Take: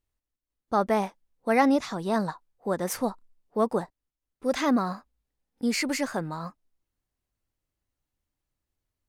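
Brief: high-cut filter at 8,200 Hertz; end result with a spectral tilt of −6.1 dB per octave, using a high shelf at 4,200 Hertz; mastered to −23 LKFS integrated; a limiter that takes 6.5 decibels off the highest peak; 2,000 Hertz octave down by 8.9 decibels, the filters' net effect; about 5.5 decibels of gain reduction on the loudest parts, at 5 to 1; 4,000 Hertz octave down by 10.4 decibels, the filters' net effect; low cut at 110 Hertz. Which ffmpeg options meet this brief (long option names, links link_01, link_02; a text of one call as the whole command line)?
ffmpeg -i in.wav -af "highpass=110,lowpass=8200,equalizer=frequency=2000:width_type=o:gain=-8,equalizer=frequency=4000:width_type=o:gain=-8,highshelf=frequency=4200:gain=-4.5,acompressor=threshold=-24dB:ratio=5,volume=11.5dB,alimiter=limit=-11.5dB:level=0:latency=1" out.wav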